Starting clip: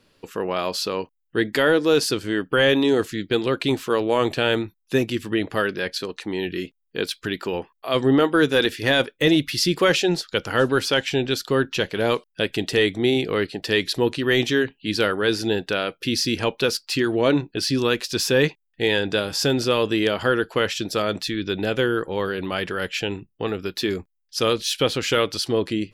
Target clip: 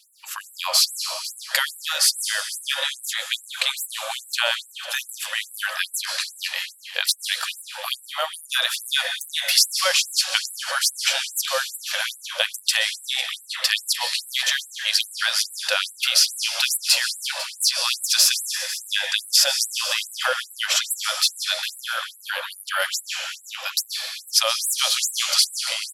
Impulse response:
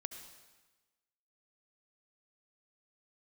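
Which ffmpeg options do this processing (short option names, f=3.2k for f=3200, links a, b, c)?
-filter_complex "[0:a]highshelf=f=4k:g=6.5,acompressor=threshold=-21dB:ratio=6,aecho=1:1:499|998:0.168|0.0403,asplit=2[a][b];[1:a]atrim=start_sample=2205,asetrate=25137,aresample=44100,highshelf=f=4.2k:g=7.5[c];[b][c]afir=irnorm=-1:irlink=0,volume=8dB[d];[a][d]amix=inputs=2:normalize=0,afftfilt=real='re*gte(b*sr/1024,490*pow(7700/490,0.5+0.5*sin(2*PI*2.4*pts/sr)))':imag='im*gte(b*sr/1024,490*pow(7700/490,0.5+0.5*sin(2*PI*2.4*pts/sr)))':win_size=1024:overlap=0.75,volume=-5.5dB"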